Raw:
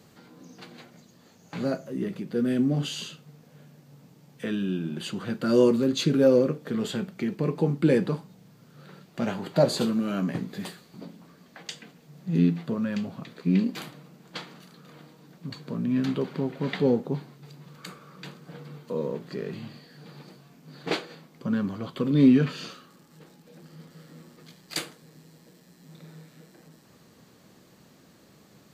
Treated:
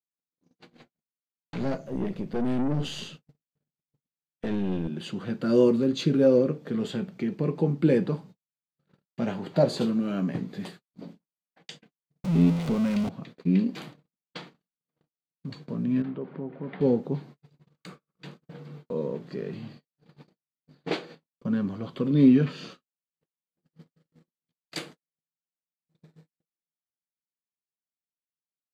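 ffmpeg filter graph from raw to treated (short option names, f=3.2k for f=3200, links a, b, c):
-filter_complex "[0:a]asettb=1/sr,asplit=3[a][b][c];[a]atrim=end=0.734[d];[b]atrim=start=0.73:end=4.88,asetpts=PTS-STARTPTS,afade=t=in:d=0.004:c=qsin,afade=t=out:st=4.146:d=0.004:c=qsin,acontrast=36,aeval=exprs='(tanh(15.8*val(0)+0.7)-tanh(0.7))/15.8':c=same[e];[c]atrim=start=4.876[f];[d][e]acrossfade=d=0.004:c1=hsin:c2=qsin[g];[g][f]acrossfade=d=0.004:c1=qsin:c2=hsin,asettb=1/sr,asplit=3[h][i][j];[h]atrim=end=12.244[k];[i]atrim=start=12.24:end=13.09,asetpts=PTS-STARTPTS,afade=t=in:d=0.004:c=qsin,afade=t=out:st=0.846:d=0.004:c=qsin,aeval=exprs='val(0)+0.5*0.0501*sgn(val(0))':c=same,equalizer=f=330:w=6.6:g=-4.5,bandreject=f=1.7k:w=6.9[l];[j]atrim=start=13.086[m];[k][l]acrossfade=d=0.004:c1=hsin:c2=qsin[n];[n][m]acrossfade=d=0.004:c1=qsin:c2=hsin,asettb=1/sr,asplit=3[o][p][q];[o]atrim=end=16.024[r];[p]atrim=start=16.02:end=16.81,asetpts=PTS-STARTPTS,afade=t=in:d=0.004:c=qsin,afade=t=out:st=0.786:d=0.004:c=qsin,lowpass=1.7k,acompressor=threshold=-38dB:ratio=1.5:attack=3.2:release=140:knee=1:detection=peak,lowshelf=f=73:g=-11.5[s];[q]atrim=start=16.806[t];[r][s]acrossfade=d=0.004:c1=hsin:c2=qsin[u];[u][t]acrossfade=d=0.004:c1=qsin:c2=hsin,aemphasis=mode=reproduction:type=50kf,agate=range=-57dB:threshold=-44dB:ratio=16:detection=peak,equalizer=f=1.3k:t=o:w=1.4:g=-3.5"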